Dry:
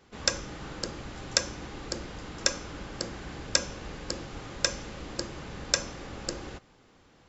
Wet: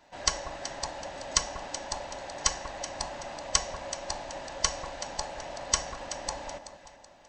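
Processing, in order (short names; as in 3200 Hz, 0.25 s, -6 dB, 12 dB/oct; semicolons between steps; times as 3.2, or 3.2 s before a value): band-swap scrambler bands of 500 Hz; echo with dull and thin repeats by turns 0.189 s, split 1300 Hz, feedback 61%, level -8 dB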